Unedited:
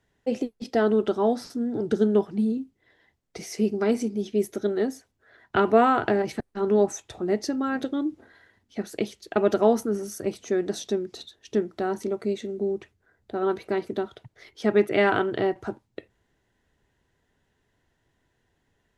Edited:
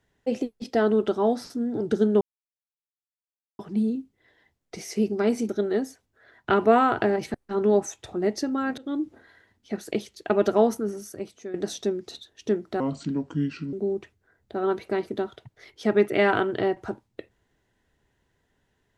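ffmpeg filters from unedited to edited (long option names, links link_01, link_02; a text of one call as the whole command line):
ffmpeg -i in.wav -filter_complex "[0:a]asplit=7[link_01][link_02][link_03][link_04][link_05][link_06][link_07];[link_01]atrim=end=2.21,asetpts=PTS-STARTPTS,afade=type=out:start_time=2.206:duration=0.004:curve=hsin,apad=pad_dur=1.38[link_08];[link_02]atrim=start=2.21:end=4.112,asetpts=PTS-STARTPTS,afade=type=in:duration=0.004:curve=hsin[link_09];[link_03]atrim=start=4.548:end=7.84,asetpts=PTS-STARTPTS,afade=type=out:start_time=3.288:duration=0.004:curve=hsin:silence=0.0668344[link_10];[link_04]atrim=start=7.84:end=10.6,asetpts=PTS-STARTPTS,afade=type=in:duration=0.25:curve=qsin:silence=0.0668344,afade=type=out:start_time=1.82:duration=0.94:silence=0.211349[link_11];[link_05]atrim=start=10.6:end=11.864,asetpts=PTS-STARTPTS,afade=type=in:duration=0.004:curve=hsin:silence=0.211349[link_12];[link_06]atrim=start=11.86:end=12.52,asetpts=PTS-STARTPTS,asetrate=31311,aresample=44100,atrim=end_sample=40994,asetpts=PTS-STARTPTS[link_13];[link_07]atrim=start=12.516[link_14];[link_08][link_09]concat=n=2:v=0:a=1[link_15];[link_10][link_11][link_12]concat=n=3:v=0:a=1[link_16];[link_15][link_16]acrossfade=duration=0.004:curve1=hsin:curve2=hsin[link_17];[link_17][link_13]acrossfade=duration=0.004:curve1=hsin:curve2=hsin[link_18];[link_18][link_14]acrossfade=duration=0.004:curve1=hsin:curve2=hsin" out.wav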